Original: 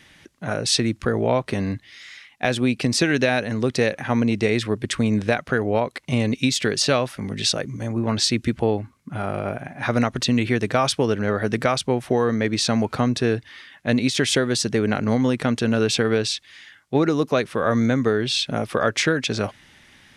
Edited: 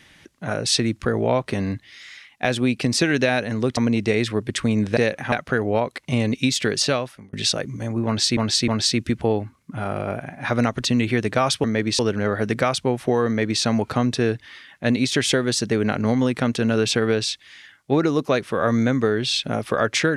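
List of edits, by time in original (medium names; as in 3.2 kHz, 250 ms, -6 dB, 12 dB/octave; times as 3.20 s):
3.77–4.12 s: move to 5.32 s
6.82–7.33 s: fade out
8.06–8.37 s: loop, 3 plays
12.30–12.65 s: copy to 11.02 s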